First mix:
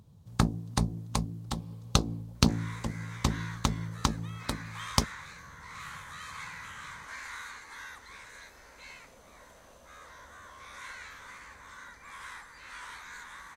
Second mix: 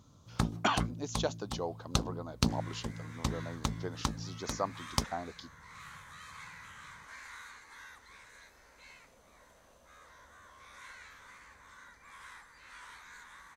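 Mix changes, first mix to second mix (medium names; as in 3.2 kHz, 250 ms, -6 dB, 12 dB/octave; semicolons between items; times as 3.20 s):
speech: unmuted; first sound -5.5 dB; second sound -6.5 dB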